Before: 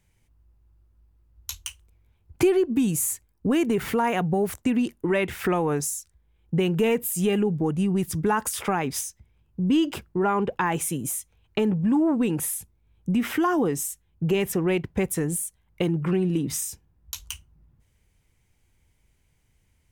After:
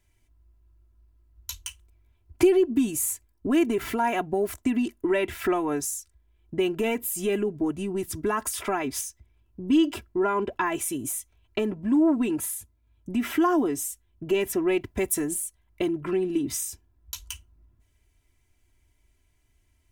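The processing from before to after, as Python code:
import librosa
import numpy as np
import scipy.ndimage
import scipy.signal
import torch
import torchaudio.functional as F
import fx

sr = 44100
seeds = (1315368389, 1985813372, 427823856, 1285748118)

y = fx.notch_comb(x, sr, f0_hz=380.0, at=(12.37, 13.09))
y = fx.high_shelf(y, sr, hz=5100.0, db=7.0, at=(14.81, 15.34))
y = y + 0.79 * np.pad(y, (int(3.0 * sr / 1000.0), 0))[:len(y)]
y = y * 10.0 ** (-3.5 / 20.0)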